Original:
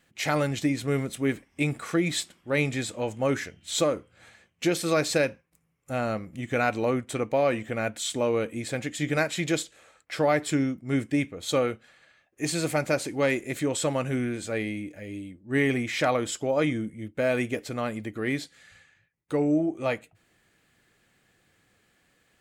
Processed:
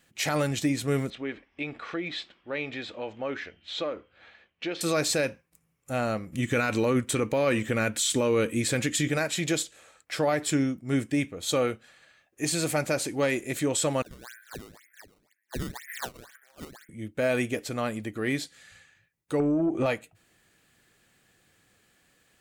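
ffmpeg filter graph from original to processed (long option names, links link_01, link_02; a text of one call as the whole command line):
ffmpeg -i in.wav -filter_complex "[0:a]asettb=1/sr,asplit=3[link_01][link_02][link_03];[link_01]atrim=end=1.104[link_04];[link_02]atrim=start=1.1:end=4.81,asetpts=PTS-STARTPTS,afade=type=in:duration=0.004:curve=qsin,afade=type=out:start_time=3.706:duration=0.004:curve=qsin,lowpass=frequency=3800:width=0.5412,lowpass=frequency=3800:width=1.3066,equalizer=frequency=130:width_type=o:width=1.5:gain=-12,acompressor=threshold=-37dB:ratio=1.5:attack=3.2:release=140:knee=1:detection=peak[link_05];[link_03]atrim=start=4.806[link_06];[link_04][link_05]acrossfade=duration=0.004:curve1=hsin:curve2=qsin[link_07];[link_07][link_06]acrossfade=duration=0.004:curve1=qsin:curve2=hsin,asettb=1/sr,asplit=3[link_08][link_09][link_10];[link_08]atrim=end=6.324[link_11];[link_09]atrim=start=6.32:end=9.08,asetpts=PTS-STARTPTS,afade=type=in:duration=0.004:curve=qsin,afade=type=out:start_time=2.756:duration=0.004:curve=qsin,equalizer=frequency=710:width_type=o:width=0.45:gain=-9,acontrast=54[link_12];[link_10]atrim=start=9.076[link_13];[link_11][link_12]acrossfade=duration=0.004:curve1=hsin:curve2=qsin[link_14];[link_14][link_13]acrossfade=duration=0.004:curve1=qsin:curve2=hsin,asettb=1/sr,asplit=3[link_15][link_16][link_17];[link_15]atrim=end=14.024[link_18];[link_16]atrim=start=14.02:end=16.89,asetpts=PTS-STARTPTS,afade=type=in:duration=0.004:curve=qsin,afade=type=out:start_time=2.866:duration=0.004:curve=qsin,asuperpass=centerf=1700:order=4:qfactor=4,aecho=1:1:196|392:0.112|0.0325,atrim=end_sample=126567,acrusher=samples=15:mix=1:aa=0.000001:lfo=1:lforange=24:lforate=2[link_19];[link_17]atrim=start=16.886[link_20];[link_18][link_19]acrossfade=duration=0.004:curve1=hsin:curve2=qsin[link_21];[link_21][link_20]acrossfade=duration=0.004:curve1=qsin:curve2=hsin,asettb=1/sr,asplit=3[link_22][link_23][link_24];[link_22]atrim=end=19.404[link_25];[link_23]atrim=start=19.4:end=19.86,asetpts=PTS-STARTPTS,afade=type=in:duration=0.004:curve=qsin,afade=type=out:start_time=0.456:duration=0.004:curve=qsin,lowpass=frequency=1700:poles=1,acompressor=threshold=-32dB:ratio=16:attack=3.2:release=140:knee=1:detection=peak,aeval=exprs='0.119*sin(PI/2*2.51*val(0)/0.119)':channel_layout=same[link_26];[link_24]atrim=start=19.856[link_27];[link_25][link_26]acrossfade=duration=0.004:curve1=hsin:curve2=qsin[link_28];[link_28][link_27]acrossfade=duration=0.004:curve1=qsin:curve2=hsin,highshelf=frequency=4400:gain=5.5,bandreject=frequency=2100:width=30,alimiter=limit=-16.5dB:level=0:latency=1:release=39" out.wav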